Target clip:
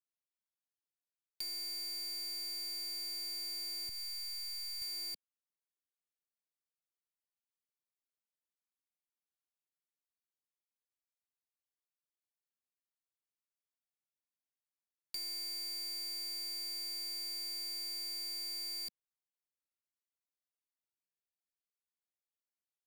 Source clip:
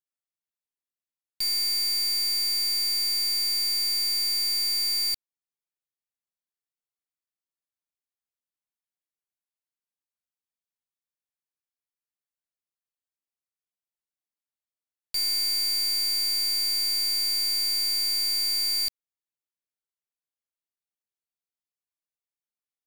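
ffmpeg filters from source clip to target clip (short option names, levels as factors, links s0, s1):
-filter_complex "[0:a]lowshelf=f=160:t=q:w=1.5:g=-7.5,asettb=1/sr,asplit=3[s0][s1][s2];[s0]atrim=end=3.894[s3];[s1]atrim=start=3.89:end=4.82,asetpts=PTS-STARTPTS,afade=t=in:d=0.004:c=qsin,afade=t=out:st=0.926:d=0.004:c=qsin,aeval=exprs='max(val(0),0)':c=same[s4];[s2]atrim=start=4.816[s5];[s3][s4]acrossfade=d=0.004:c1=hsin:c2=qsin[s6];[s6][s5]acrossfade=d=0.004:c1=qsin:c2=hsin,acrossover=split=750|1700[s7][s8][s9];[s7]acompressor=threshold=0.00501:ratio=4[s10];[s8]acompressor=threshold=0.00112:ratio=4[s11];[s9]acompressor=threshold=0.0282:ratio=4[s12];[s10][s11][s12]amix=inputs=3:normalize=0,volume=0.398"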